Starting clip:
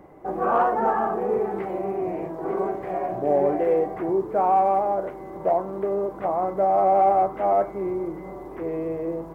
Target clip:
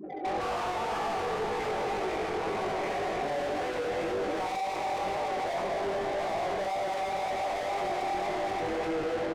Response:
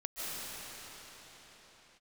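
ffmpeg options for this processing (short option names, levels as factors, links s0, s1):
-filter_complex "[0:a]aexciter=amount=9.6:drive=3.5:freq=2200,aecho=1:1:64.14|271.1:0.562|0.316,asplit=2[s0][s1];[1:a]atrim=start_sample=2205,adelay=68[s2];[s1][s2]afir=irnorm=-1:irlink=0,volume=0.447[s3];[s0][s3]amix=inputs=2:normalize=0,afftfilt=real='re*gte(hypot(re,im),0.0178)':imag='im*gte(hypot(re,im),0.0178)':win_size=1024:overlap=0.75,asplit=2[s4][s5];[s5]highpass=f=720:p=1,volume=63.1,asoftclip=type=tanh:threshold=0.596[s6];[s4][s6]amix=inputs=2:normalize=0,lowpass=f=1900:p=1,volume=0.501,adynamicsmooth=sensitivity=1:basefreq=860,flanger=delay=18.5:depth=4.2:speed=1.9,alimiter=limit=0.119:level=0:latency=1,volume=0.422"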